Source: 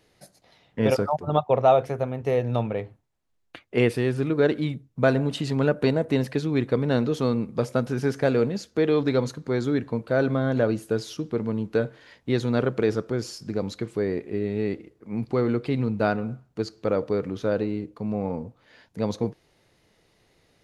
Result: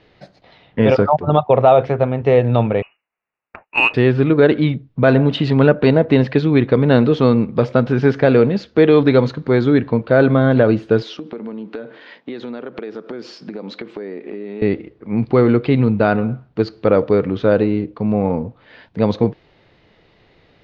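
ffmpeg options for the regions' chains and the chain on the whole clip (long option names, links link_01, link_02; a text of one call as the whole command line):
ffmpeg -i in.wav -filter_complex "[0:a]asettb=1/sr,asplit=3[link_01][link_02][link_03];[link_01]atrim=end=2.824[link_04];[link_02]atrim=start=2.82:end=3.94,asetpts=PTS-STARTPTS,afade=type=in:duration=0.004:curve=qsin,afade=type=out:start_time=1.116:duration=0.004:curve=qsin,highpass=frequency=520:poles=1,lowpass=frequency=2600:width_type=q:width=0.5098,lowpass=frequency=2600:width_type=q:width=0.6013,lowpass=frequency=2600:width_type=q:width=0.9,lowpass=frequency=2600:width_type=q:width=2.563,afreqshift=-3000,adynamicsmooth=sensitivity=2.5:basefreq=1900[link_05];[link_03]atrim=start=3.936[link_06];[link_04][link_05]acrossfade=duration=0.004:curve1=hsin:curve2=qsin[link_07];[link_07][link_06]acrossfade=duration=0.004:curve1=qsin:curve2=hsin,asettb=1/sr,asplit=3[link_08][link_09][link_10];[link_08]atrim=end=11.024[link_11];[link_09]atrim=start=11.02:end=14.62,asetpts=PTS-STARTPTS,afade=type=in:duration=0.004:curve=qsin,afade=type=out:start_time=3.596:duration=0.004:curve=qsin,highpass=frequency=200:width=0.5412,highpass=frequency=200:width=1.3066,acompressor=threshold=-35dB:ratio=12:attack=3.2:release=140:knee=1:detection=peak[link_12];[link_10]atrim=start=14.616[link_13];[link_11][link_12]acrossfade=duration=0.004:curve1=hsin:curve2=qsin[link_14];[link_14][link_13]acrossfade=duration=0.004:curve1=qsin:curve2=hsin,lowpass=frequency=3900:width=0.5412,lowpass=frequency=3900:width=1.3066,alimiter=level_in=11.5dB:limit=-1dB:release=50:level=0:latency=1,volume=-1dB" out.wav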